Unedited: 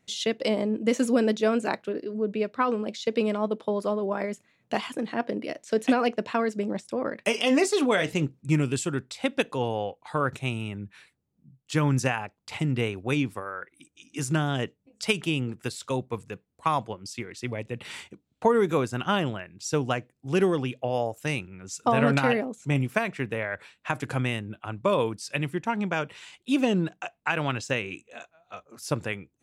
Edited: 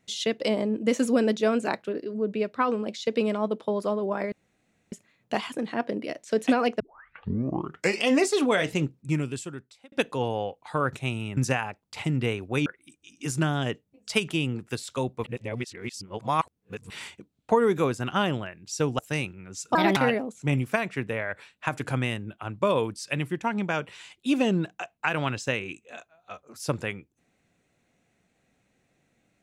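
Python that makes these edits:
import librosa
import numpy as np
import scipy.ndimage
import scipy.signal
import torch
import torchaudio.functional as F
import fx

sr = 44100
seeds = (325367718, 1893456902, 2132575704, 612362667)

y = fx.edit(x, sr, fx.insert_room_tone(at_s=4.32, length_s=0.6),
    fx.tape_start(start_s=6.2, length_s=1.28),
    fx.fade_out_span(start_s=8.2, length_s=1.12),
    fx.cut(start_s=10.77, length_s=1.15),
    fx.cut(start_s=13.21, length_s=0.38),
    fx.reverse_span(start_s=16.17, length_s=1.66),
    fx.cut(start_s=19.92, length_s=1.21),
    fx.speed_span(start_s=21.89, length_s=0.3, speed=1.4), tone=tone)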